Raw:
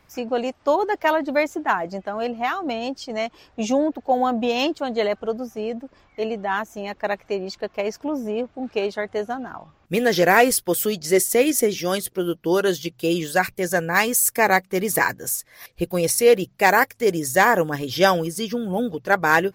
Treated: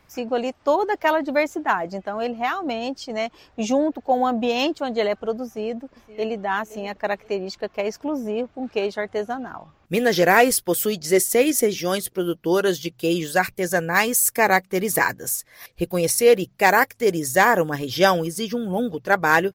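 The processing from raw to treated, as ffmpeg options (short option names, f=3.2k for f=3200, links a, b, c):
-filter_complex "[0:a]asplit=2[a][b];[b]afade=t=in:st=5.44:d=0.01,afade=t=out:st=6.44:d=0.01,aecho=0:1:520|1040|1560:0.141254|0.0423761|0.0127128[c];[a][c]amix=inputs=2:normalize=0"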